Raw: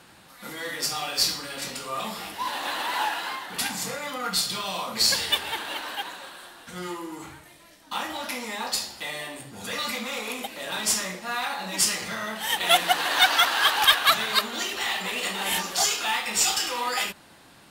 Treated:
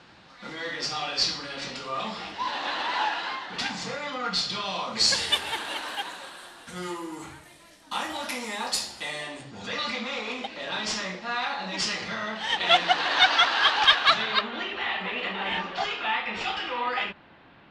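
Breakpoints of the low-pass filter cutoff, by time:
low-pass filter 24 dB per octave
0:04.82 5,500 Hz
0:05.37 11,000 Hz
0:08.89 11,000 Hz
0:09.72 5,200 Hz
0:14.14 5,200 Hz
0:14.55 3,100 Hz

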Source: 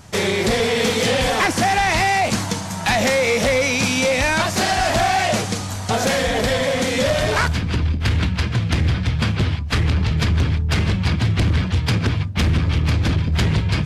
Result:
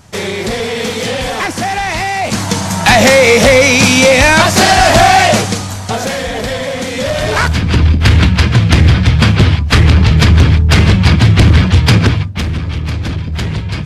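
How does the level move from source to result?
0:02.16 +1 dB
0:02.64 +11 dB
0:05.20 +11 dB
0:06.11 +1 dB
0:06.96 +1 dB
0:07.83 +11 dB
0:12.01 +11 dB
0:12.46 +0.5 dB

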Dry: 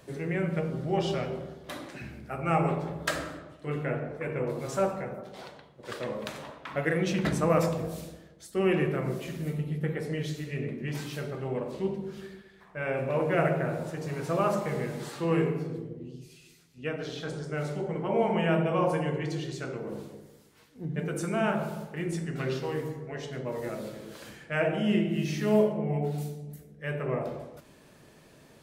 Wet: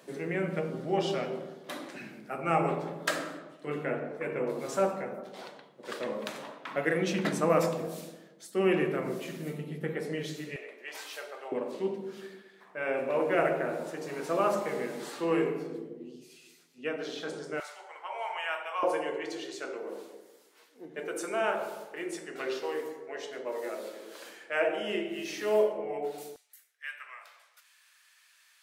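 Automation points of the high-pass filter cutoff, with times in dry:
high-pass filter 24 dB per octave
190 Hz
from 0:10.56 550 Hz
from 0:11.52 230 Hz
from 0:17.60 860 Hz
from 0:18.83 340 Hz
from 0:26.36 1,400 Hz

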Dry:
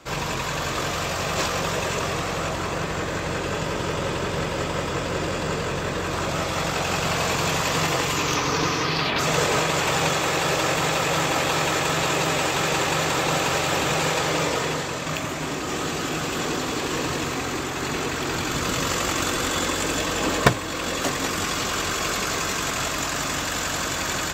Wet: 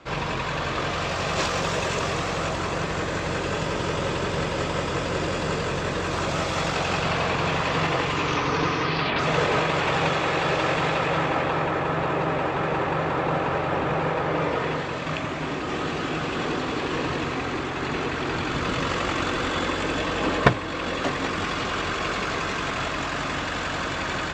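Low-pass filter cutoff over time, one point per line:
0:00.81 3,800 Hz
0:01.53 6,700 Hz
0:06.58 6,700 Hz
0:07.30 3,200 Hz
0:10.80 3,200 Hz
0:11.73 1,600 Hz
0:14.25 1,600 Hz
0:14.99 3,300 Hz

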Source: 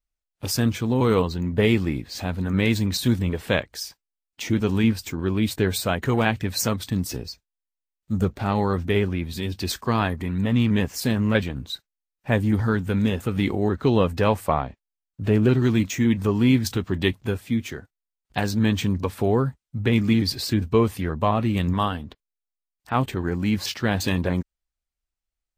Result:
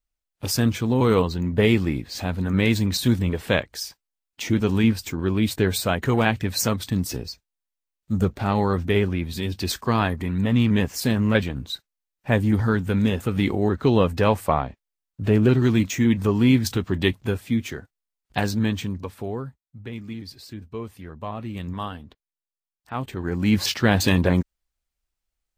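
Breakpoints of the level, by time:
0:18.44 +1 dB
0:18.88 −5.5 dB
0:19.97 −15 dB
0:20.69 −15 dB
0:21.91 −7 dB
0:23.01 −7 dB
0:23.56 +4.5 dB

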